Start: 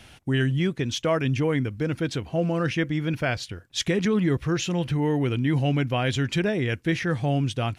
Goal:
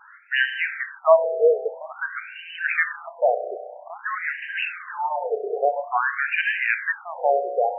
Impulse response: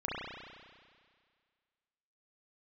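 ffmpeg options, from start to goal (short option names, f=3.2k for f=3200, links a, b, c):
-filter_complex "[0:a]asplit=2[a][b];[1:a]atrim=start_sample=2205[c];[b][c]afir=irnorm=-1:irlink=0,volume=-10.5dB[d];[a][d]amix=inputs=2:normalize=0,afftfilt=real='re*between(b*sr/1024,540*pow(2200/540,0.5+0.5*sin(2*PI*0.5*pts/sr))/1.41,540*pow(2200/540,0.5+0.5*sin(2*PI*0.5*pts/sr))*1.41)':imag='im*between(b*sr/1024,540*pow(2200/540,0.5+0.5*sin(2*PI*0.5*pts/sr))/1.41,540*pow(2200/540,0.5+0.5*sin(2*PI*0.5*pts/sr))*1.41)':win_size=1024:overlap=0.75,volume=9dB"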